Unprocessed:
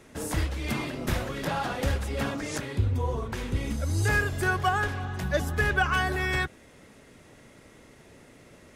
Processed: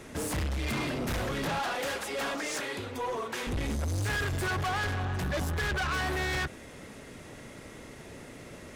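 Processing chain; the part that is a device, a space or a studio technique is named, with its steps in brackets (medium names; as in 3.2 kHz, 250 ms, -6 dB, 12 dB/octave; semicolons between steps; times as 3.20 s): 1.59–3.47 s: Bessel high-pass 510 Hz, order 2; saturation between pre-emphasis and de-emphasis (treble shelf 9.8 kHz +11 dB; saturation -35 dBFS, distortion -4 dB; treble shelf 9.8 kHz -11 dB); trim +6.5 dB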